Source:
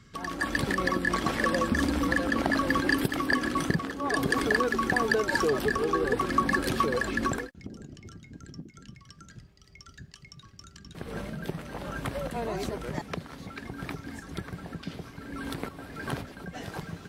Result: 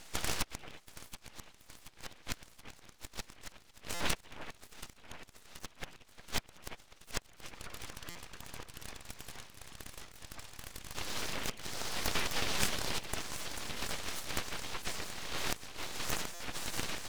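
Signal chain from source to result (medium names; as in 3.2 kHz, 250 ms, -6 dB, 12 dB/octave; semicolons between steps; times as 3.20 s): inverted gate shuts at -18 dBFS, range -39 dB; treble shelf 8.7 kHz -12 dB; echo whose repeats swap between lows and highs 364 ms, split 1.4 kHz, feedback 77%, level -10 dB; spectral gate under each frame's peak -20 dB weak; full-wave rectifier; buffer glitch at 3.94/8.09/16.34 s, samples 256, times 10; trim +16 dB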